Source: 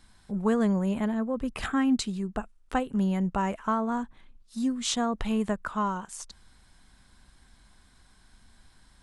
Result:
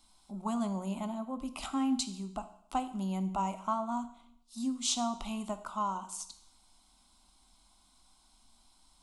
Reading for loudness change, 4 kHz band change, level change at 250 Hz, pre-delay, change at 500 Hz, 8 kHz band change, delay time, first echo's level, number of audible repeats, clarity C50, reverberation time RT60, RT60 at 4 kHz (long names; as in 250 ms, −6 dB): −6.5 dB, −2.5 dB, −7.5 dB, 16 ms, −9.5 dB, −0.5 dB, no echo audible, no echo audible, no echo audible, 13.5 dB, 0.70 s, 0.70 s